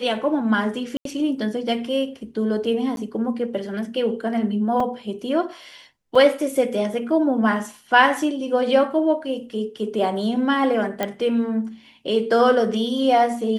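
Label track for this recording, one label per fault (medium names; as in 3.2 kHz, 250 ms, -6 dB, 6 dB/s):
0.970000	1.050000	dropout 83 ms
2.960000	2.970000	dropout
4.800000	4.800000	dropout 3.3 ms
6.150000	6.150000	dropout 4.4 ms
11.030000	11.030000	pop -9 dBFS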